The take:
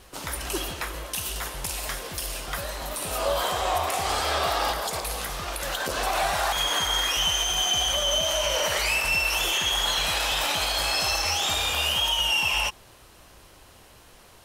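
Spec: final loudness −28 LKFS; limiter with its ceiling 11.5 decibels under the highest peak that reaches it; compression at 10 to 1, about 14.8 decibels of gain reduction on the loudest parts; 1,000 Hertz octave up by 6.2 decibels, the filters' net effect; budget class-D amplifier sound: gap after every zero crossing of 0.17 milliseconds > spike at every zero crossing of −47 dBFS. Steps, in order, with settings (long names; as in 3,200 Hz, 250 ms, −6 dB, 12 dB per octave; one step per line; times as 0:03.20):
parametric band 1,000 Hz +8 dB
downward compressor 10 to 1, threshold −32 dBFS
brickwall limiter −31 dBFS
gap after every zero crossing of 0.17 ms
spike at every zero crossing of −47 dBFS
level +14.5 dB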